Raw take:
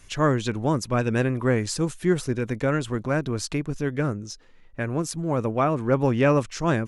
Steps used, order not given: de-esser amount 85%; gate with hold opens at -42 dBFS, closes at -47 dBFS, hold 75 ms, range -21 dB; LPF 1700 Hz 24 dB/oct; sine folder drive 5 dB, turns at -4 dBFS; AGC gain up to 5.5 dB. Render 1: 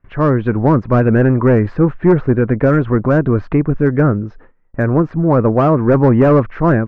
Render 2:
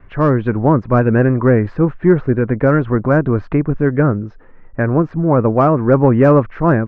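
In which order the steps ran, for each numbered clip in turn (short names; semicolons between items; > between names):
gate with hold > AGC > sine folder > LPF > de-esser; sine folder > gate with hold > LPF > de-esser > AGC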